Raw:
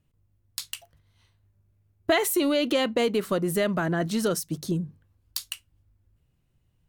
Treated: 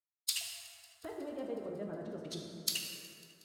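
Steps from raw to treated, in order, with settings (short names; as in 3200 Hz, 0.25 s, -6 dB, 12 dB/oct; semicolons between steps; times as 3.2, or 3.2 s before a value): gate -55 dBFS, range -46 dB; treble ducked by the level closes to 320 Hz, closed at -23.5 dBFS; limiter -23.5 dBFS, peak gain reduction 10 dB; resonant low shelf 110 Hz +13 dB, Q 1.5; vocal rider 0.5 s; differentiator; time stretch by phase-locked vocoder 0.5×; thin delay 0.183 s, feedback 75%, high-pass 2000 Hz, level -23.5 dB; plate-style reverb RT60 2.7 s, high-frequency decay 0.45×, DRR -0.5 dB; gain +16 dB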